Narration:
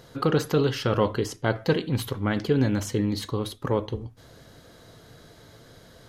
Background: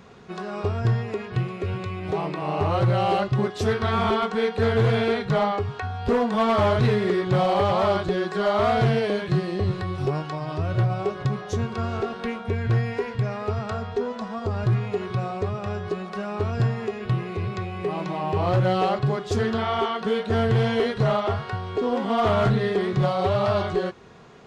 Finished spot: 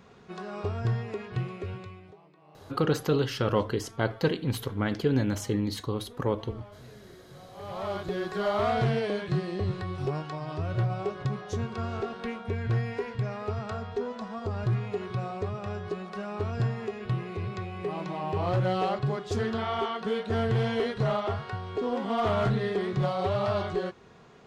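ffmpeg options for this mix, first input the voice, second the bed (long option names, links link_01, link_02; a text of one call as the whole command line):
ffmpeg -i stem1.wav -i stem2.wav -filter_complex "[0:a]adelay=2550,volume=-3dB[link_01];[1:a]volume=18dB,afade=type=out:start_time=1.52:duration=0.64:silence=0.0668344,afade=type=in:start_time=7.53:duration=0.77:silence=0.0630957[link_02];[link_01][link_02]amix=inputs=2:normalize=0" out.wav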